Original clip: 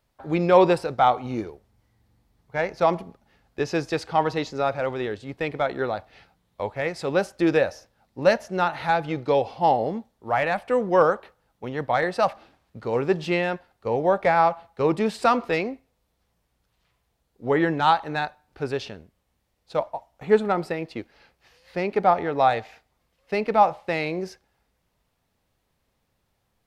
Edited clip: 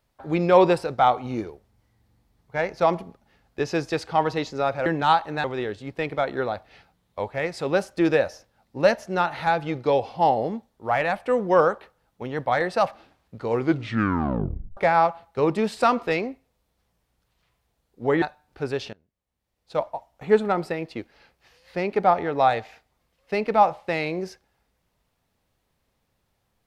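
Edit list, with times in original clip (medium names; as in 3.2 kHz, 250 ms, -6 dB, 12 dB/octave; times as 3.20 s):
12.94 s: tape stop 1.25 s
17.64–18.22 s: move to 4.86 s
18.93–19.80 s: fade in quadratic, from -20.5 dB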